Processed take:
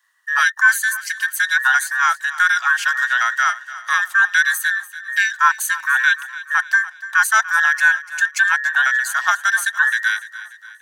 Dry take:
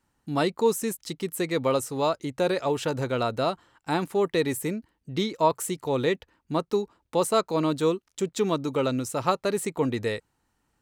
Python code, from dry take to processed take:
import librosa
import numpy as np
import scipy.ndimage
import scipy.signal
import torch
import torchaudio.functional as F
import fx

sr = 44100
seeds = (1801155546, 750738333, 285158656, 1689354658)

y = fx.band_invert(x, sr, width_hz=2000)
y = scipy.signal.sosfilt(scipy.signal.butter(4, 1100.0, 'highpass', fs=sr, output='sos'), y)
y = fx.echo_feedback(y, sr, ms=292, feedback_pct=48, wet_db=-16)
y = y * 10.0 ** (9.0 / 20.0)